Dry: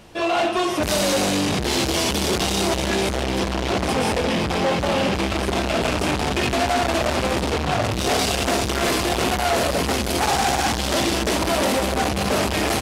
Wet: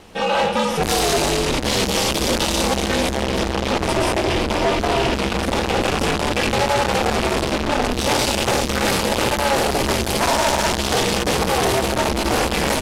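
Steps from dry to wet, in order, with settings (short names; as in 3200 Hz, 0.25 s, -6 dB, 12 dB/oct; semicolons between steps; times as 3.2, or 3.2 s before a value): ring modulator 140 Hz; notches 50/100/150/200 Hz; gain +5 dB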